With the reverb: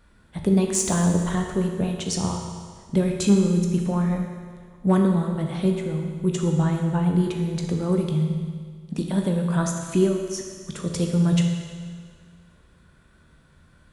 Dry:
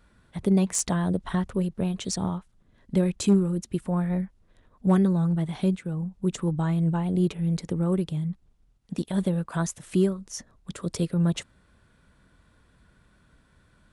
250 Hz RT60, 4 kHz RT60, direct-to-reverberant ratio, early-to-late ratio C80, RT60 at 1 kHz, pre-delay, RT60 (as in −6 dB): 1.8 s, 1.8 s, 2.0 dB, 5.5 dB, 1.8 s, 14 ms, 1.8 s